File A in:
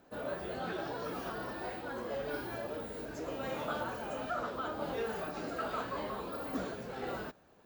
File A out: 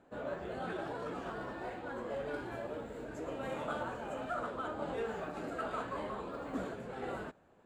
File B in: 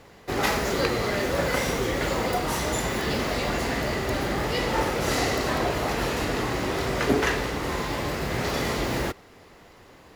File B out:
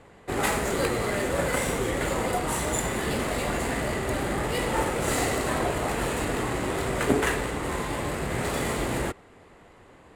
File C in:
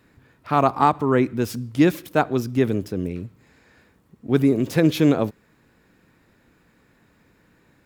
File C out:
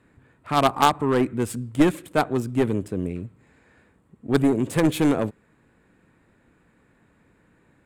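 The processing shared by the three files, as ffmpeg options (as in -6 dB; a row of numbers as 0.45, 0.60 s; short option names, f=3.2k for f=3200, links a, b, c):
-af "adynamicsmooth=sensitivity=8:basefreq=4.8k,highshelf=f=6.8k:t=q:w=3:g=7.5,aeval=exprs='0.708*(cos(1*acos(clip(val(0)/0.708,-1,1)))-cos(1*PI/2))+0.0794*(cos(4*acos(clip(val(0)/0.708,-1,1)))-cos(4*PI/2))+0.251*(cos(6*acos(clip(val(0)/0.708,-1,1)))-cos(6*PI/2))+0.141*(cos(8*acos(clip(val(0)/0.708,-1,1)))-cos(8*PI/2))':c=same,volume=-1dB"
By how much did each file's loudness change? -1.5, -1.0, -1.5 LU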